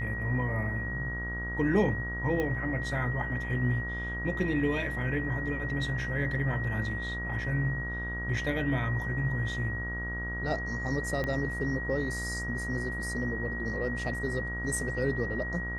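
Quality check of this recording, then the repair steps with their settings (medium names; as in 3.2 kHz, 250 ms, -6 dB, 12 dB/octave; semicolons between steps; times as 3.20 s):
buzz 60 Hz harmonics 28 -37 dBFS
whine 1.9 kHz -35 dBFS
2.40 s: pop -19 dBFS
11.24 s: pop -20 dBFS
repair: de-click; de-hum 60 Hz, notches 28; band-stop 1.9 kHz, Q 30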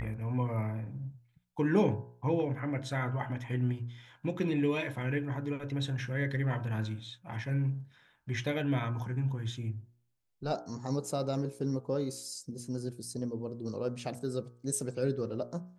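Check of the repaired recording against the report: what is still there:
11.24 s: pop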